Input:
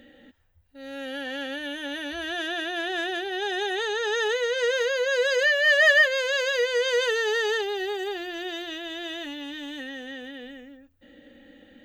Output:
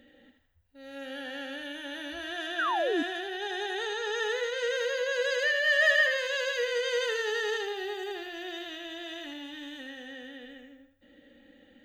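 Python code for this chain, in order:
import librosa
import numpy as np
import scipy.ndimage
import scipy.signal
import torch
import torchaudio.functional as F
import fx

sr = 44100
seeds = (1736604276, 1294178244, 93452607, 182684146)

y = fx.echo_thinned(x, sr, ms=80, feedback_pct=38, hz=420.0, wet_db=-5.5)
y = fx.spec_paint(y, sr, seeds[0], shape='fall', start_s=2.58, length_s=0.45, low_hz=270.0, high_hz=1700.0, level_db=-22.0)
y = y * 10.0 ** (-6.5 / 20.0)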